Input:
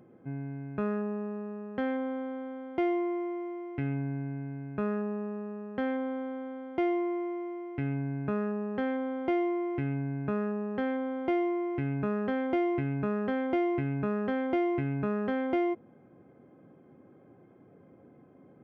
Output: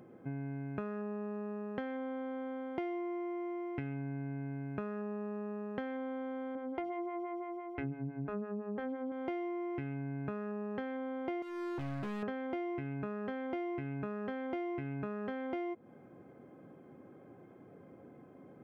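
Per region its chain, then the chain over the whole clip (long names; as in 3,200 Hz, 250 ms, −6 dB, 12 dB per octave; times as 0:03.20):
0:06.55–0:09.12: low-shelf EQ 310 Hz +10 dB + mains-hum notches 50/100/150/200/250/300/350 Hz + phaser with staggered stages 5.9 Hz
0:11.42–0:12.23: low-pass filter 1,600 Hz 6 dB per octave + hard clipping −36.5 dBFS
whole clip: low-shelf EQ 340 Hz −3.5 dB; downward compressor, threshold −39 dBFS; level +3 dB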